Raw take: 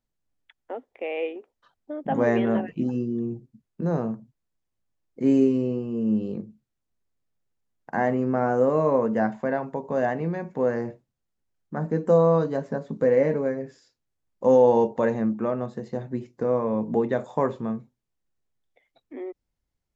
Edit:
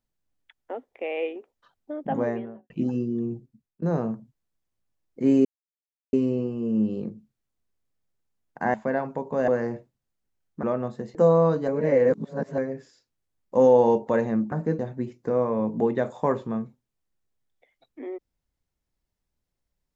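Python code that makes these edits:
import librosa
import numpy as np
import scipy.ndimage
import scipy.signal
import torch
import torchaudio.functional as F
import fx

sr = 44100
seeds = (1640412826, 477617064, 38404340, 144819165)

y = fx.studio_fade_out(x, sr, start_s=1.91, length_s=0.79)
y = fx.edit(y, sr, fx.fade_out_to(start_s=3.34, length_s=0.48, floor_db=-20.0),
    fx.insert_silence(at_s=5.45, length_s=0.68),
    fx.cut(start_s=8.06, length_s=1.26),
    fx.cut(start_s=10.06, length_s=0.56),
    fx.swap(start_s=11.77, length_s=0.27, other_s=15.41, other_length_s=0.52),
    fx.reverse_span(start_s=12.57, length_s=0.9), tone=tone)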